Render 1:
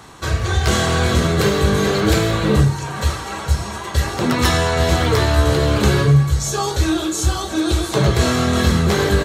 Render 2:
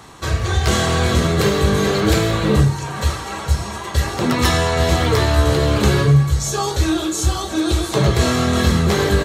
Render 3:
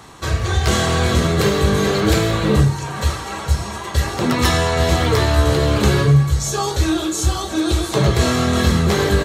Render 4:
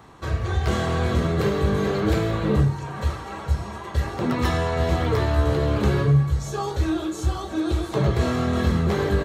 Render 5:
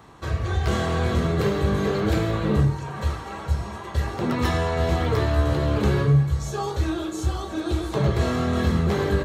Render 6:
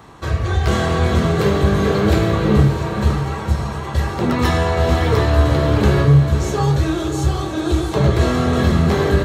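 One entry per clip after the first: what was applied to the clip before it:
notch 1500 Hz, Q 23
nothing audible
bell 8800 Hz -11.5 dB 2.8 oct; gain -5 dB
de-hum 63.13 Hz, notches 38
diffused feedback echo 0.578 s, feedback 44%, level -8 dB; gain +6 dB

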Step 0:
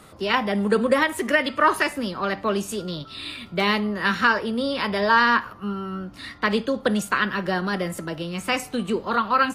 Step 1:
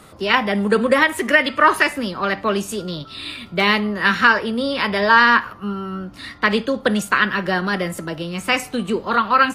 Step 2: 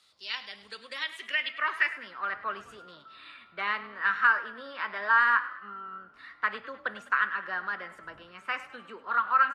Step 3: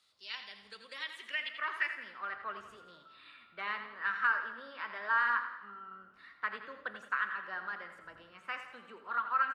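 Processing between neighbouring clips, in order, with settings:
dynamic EQ 2100 Hz, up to +4 dB, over -34 dBFS, Q 1; gain +3 dB
wind noise 90 Hz -34 dBFS; frequency-shifting echo 0.102 s, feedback 48%, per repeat +35 Hz, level -16 dB; band-pass sweep 4300 Hz -> 1400 Hz, 0.85–2.29; gain -6.5 dB
feedback echo 84 ms, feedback 51%, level -10.5 dB; gain -7.5 dB

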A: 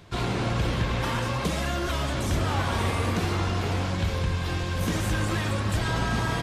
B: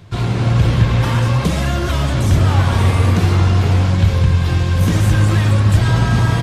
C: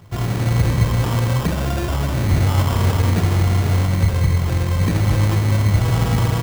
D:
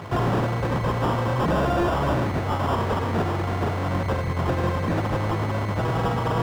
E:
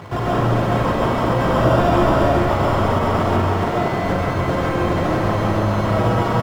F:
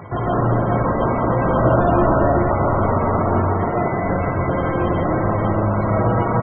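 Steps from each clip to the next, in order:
bell 110 Hz +10.5 dB 1.4 oct; AGC gain up to 3.5 dB; gain +3 dB
sample-rate reducer 2100 Hz, jitter 0%; gain -3.5 dB
limiter -11.5 dBFS, peak gain reduction 5.5 dB; negative-ratio compressor -21 dBFS, ratio -0.5; overdrive pedal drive 29 dB, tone 1100 Hz, clips at -7.5 dBFS; gain -5.5 dB
echo 0.424 s -3 dB; reverb RT60 0.75 s, pre-delay 95 ms, DRR -2.5 dB
loudest bins only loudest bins 64

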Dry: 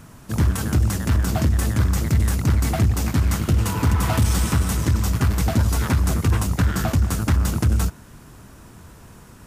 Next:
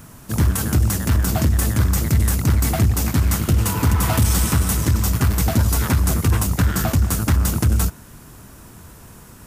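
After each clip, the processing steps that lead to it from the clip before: high shelf 9800 Hz +11 dB; gain +1.5 dB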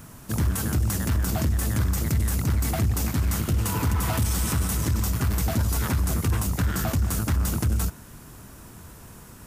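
limiter -14 dBFS, peak gain reduction 6 dB; gain -2.5 dB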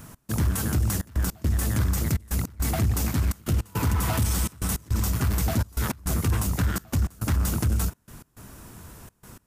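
step gate "x.xxxxx." 104 bpm -24 dB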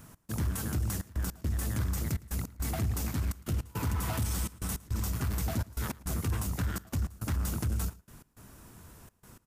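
outdoor echo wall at 19 m, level -21 dB; gain -7.5 dB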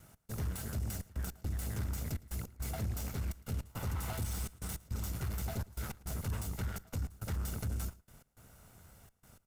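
minimum comb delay 1.4 ms; gain -5 dB

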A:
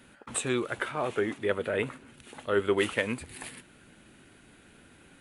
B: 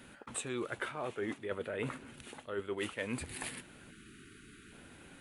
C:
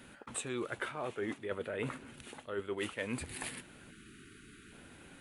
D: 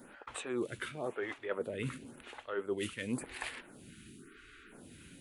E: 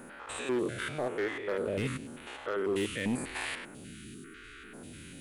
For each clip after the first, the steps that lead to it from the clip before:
spectral delete 3.91–4.72, 460–1100 Hz; reverse; compressor 12:1, threshold -35 dBFS, peak gain reduction 15 dB; reverse; gain +1 dB
nothing audible
photocell phaser 0.95 Hz; gain +3.5 dB
stepped spectrum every 0.1 s; overloaded stage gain 34 dB; gain +8.5 dB

